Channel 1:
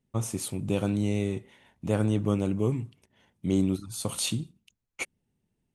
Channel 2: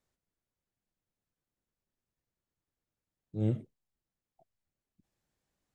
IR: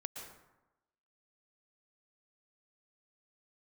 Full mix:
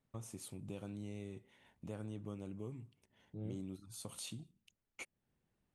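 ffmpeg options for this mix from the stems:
-filter_complex "[0:a]volume=-7dB[a];[1:a]lowpass=2.9k,volume=-1.5dB[b];[a][b]amix=inputs=2:normalize=0,acompressor=threshold=-52dB:ratio=2"

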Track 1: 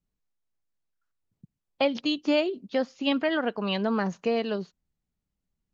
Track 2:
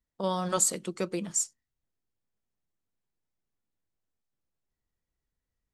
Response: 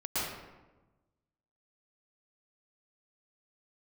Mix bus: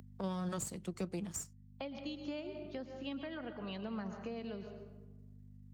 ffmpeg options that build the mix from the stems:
-filter_complex "[0:a]volume=-13.5dB,asplit=3[a][b][c];[b]volume=-14dB[d];[1:a]aeval=exprs='if(lt(val(0),0),0.447*val(0),val(0))':c=same,aeval=exprs='val(0)+0.00224*(sin(2*PI*50*n/s)+sin(2*PI*2*50*n/s)/2+sin(2*PI*3*50*n/s)/3+sin(2*PI*4*50*n/s)/4+sin(2*PI*5*50*n/s)/5)':c=same,acompressor=mode=upward:threshold=-46dB:ratio=2.5,volume=-0.5dB[e];[c]apad=whole_len=253024[f];[e][f]sidechaincompress=threshold=-37dB:ratio=8:attack=16:release=390[g];[2:a]atrim=start_sample=2205[h];[d][h]afir=irnorm=-1:irlink=0[i];[a][g][i]amix=inputs=3:normalize=0,highpass=f=61:w=0.5412,highpass=f=61:w=1.3066,acrossover=split=240[j][k];[k]acompressor=threshold=-44dB:ratio=3[l];[j][l]amix=inputs=2:normalize=0"

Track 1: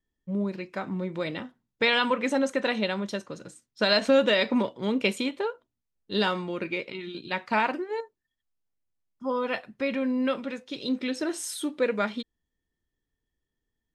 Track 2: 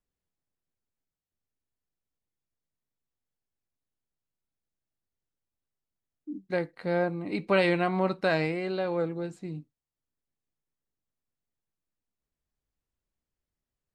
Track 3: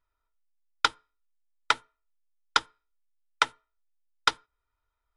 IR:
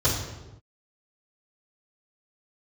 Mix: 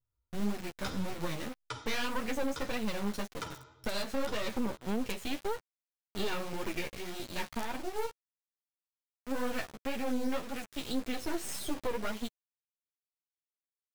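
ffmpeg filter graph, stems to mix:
-filter_complex "[0:a]asoftclip=type=tanh:threshold=-17dB,adynamicequalizer=threshold=0.00891:dfrequency=3400:dqfactor=1.7:tfrequency=3400:tqfactor=1.7:attack=5:release=100:ratio=0.375:range=2:mode=cutabove:tftype=bell,acrusher=bits=4:dc=4:mix=0:aa=0.000001,adelay=50,volume=3dB[a];[2:a]equalizer=f=1.7k:w=0.34:g=-12.5,volume=-7dB,asplit=2[b][c];[c]volume=-12.5dB[d];[3:a]atrim=start_sample=2205[e];[d][e]afir=irnorm=-1:irlink=0[f];[a][b][f]amix=inputs=3:normalize=0,equalizer=f=140:t=o:w=1.2:g=3,flanger=delay=7.8:depth=7.5:regen=-2:speed=1.8:shape=triangular,alimiter=limit=-22dB:level=0:latency=1:release=331"

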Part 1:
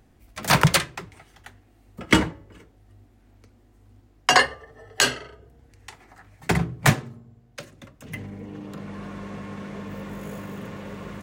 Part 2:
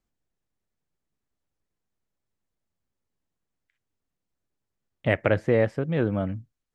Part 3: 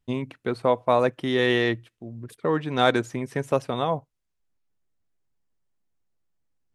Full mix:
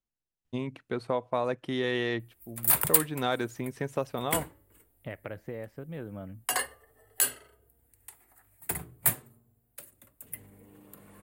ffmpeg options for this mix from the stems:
-filter_complex "[0:a]equalizer=f=170:t=o:w=0.86:g=-6.5,aexciter=amount=12.3:drive=8.7:freq=8.7k,adelay=2200,volume=-15dB[a];[1:a]acompressor=threshold=-22dB:ratio=6,volume=-12.5dB[b];[2:a]acompressor=threshold=-23dB:ratio=2,adelay=450,volume=-4.5dB[c];[a][b][c]amix=inputs=3:normalize=0"

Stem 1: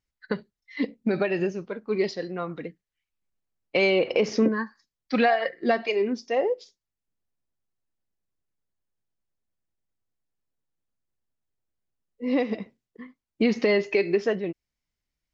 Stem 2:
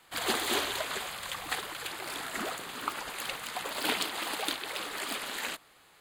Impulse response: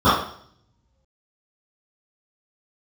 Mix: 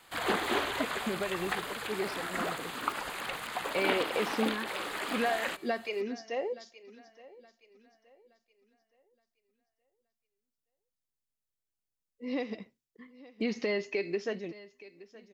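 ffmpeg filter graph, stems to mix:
-filter_complex "[0:a]highshelf=f=3.5k:g=11,volume=-10dB,asplit=2[a][b];[b]volume=-19.5dB[c];[1:a]volume=2dB[d];[c]aecho=0:1:871|1742|2613|3484|4355:1|0.35|0.122|0.0429|0.015[e];[a][d][e]amix=inputs=3:normalize=0,acrossover=split=2700[f][g];[g]acompressor=threshold=-43dB:ratio=4:attack=1:release=60[h];[f][h]amix=inputs=2:normalize=0"

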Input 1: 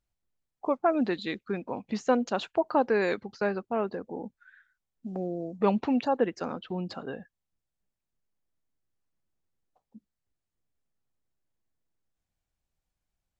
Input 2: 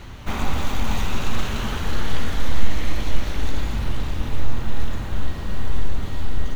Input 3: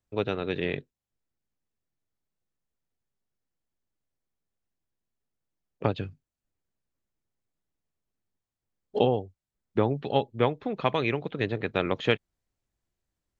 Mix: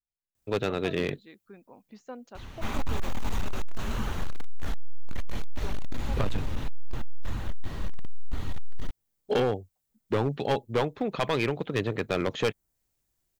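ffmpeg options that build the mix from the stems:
-filter_complex "[0:a]volume=-17.5dB[a];[1:a]flanger=delay=0.7:depth=8.4:regen=-39:speed=1.8:shape=sinusoidal,adelay=2350,volume=-1.5dB[b];[2:a]aemphasis=mode=production:type=50kf,adelay=350,volume=2dB[c];[a][b][c]amix=inputs=3:normalize=0,adynamicequalizer=threshold=0.00631:dfrequency=3400:dqfactor=0.76:tfrequency=3400:tqfactor=0.76:attack=5:release=100:ratio=0.375:range=3:mode=cutabove:tftype=bell,asoftclip=type=hard:threshold=-19.5dB"

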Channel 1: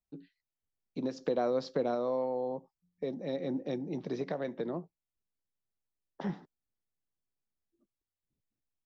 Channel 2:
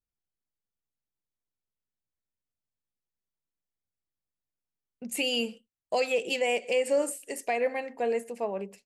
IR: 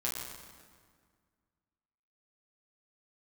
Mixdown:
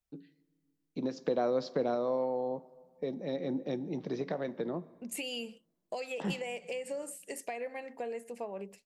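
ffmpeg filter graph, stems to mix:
-filter_complex "[0:a]volume=-0.5dB,asplit=2[a][b];[b]volume=-20dB[c];[1:a]acompressor=threshold=-32dB:ratio=6,volume=-3.5dB[d];[2:a]atrim=start_sample=2205[e];[c][e]afir=irnorm=-1:irlink=0[f];[a][d][f]amix=inputs=3:normalize=0"

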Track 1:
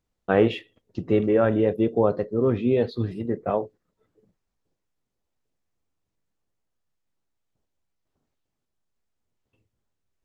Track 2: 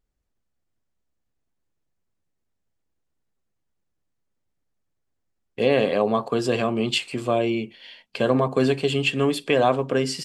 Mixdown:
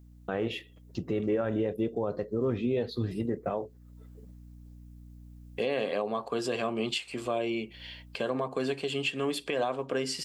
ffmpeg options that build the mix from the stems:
-filter_complex "[0:a]aeval=exprs='val(0)+0.00224*(sin(2*PI*60*n/s)+sin(2*PI*2*60*n/s)/2+sin(2*PI*3*60*n/s)/3+sin(2*PI*4*60*n/s)/4+sin(2*PI*5*60*n/s)/5)':c=same,aemphasis=mode=production:type=50kf,dynaudnorm=f=240:g=21:m=4.5dB,volume=1.5dB[a];[1:a]lowshelf=f=180:g=-11,volume=-1dB,asplit=2[b][c];[c]apad=whole_len=451642[d];[a][d]sidechaincompress=threshold=-40dB:ratio=8:attack=16:release=180[e];[e][b]amix=inputs=2:normalize=0,alimiter=limit=-20dB:level=0:latency=1:release=411"

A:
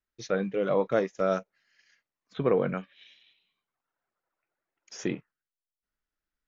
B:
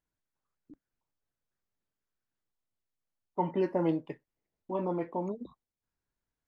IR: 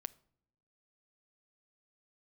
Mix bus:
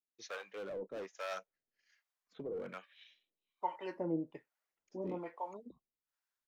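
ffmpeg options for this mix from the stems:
-filter_complex "[0:a]highpass=210,asoftclip=type=hard:threshold=-27dB,volume=-4dB[a];[1:a]adelay=250,volume=-1dB[b];[a][b]amix=inputs=2:normalize=0,lowshelf=f=290:g=-9.5,acrossover=split=560[c][d];[c]aeval=exprs='val(0)*(1-1/2+1/2*cos(2*PI*1.2*n/s))':c=same[e];[d]aeval=exprs='val(0)*(1-1/2-1/2*cos(2*PI*1.2*n/s))':c=same[f];[e][f]amix=inputs=2:normalize=0"

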